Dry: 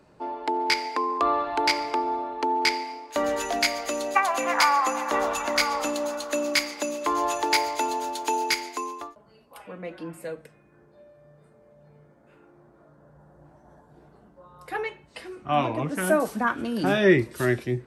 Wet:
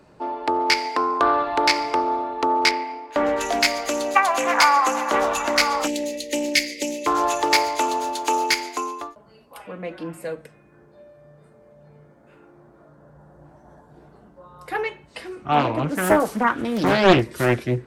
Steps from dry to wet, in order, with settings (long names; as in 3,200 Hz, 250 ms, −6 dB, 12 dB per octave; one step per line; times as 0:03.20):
0:02.71–0:03.41: bass and treble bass 0 dB, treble −14 dB
0:05.87–0:07.06: time-frequency box erased 600–1,800 Hz
highs frequency-modulated by the lows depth 0.76 ms
level +4.5 dB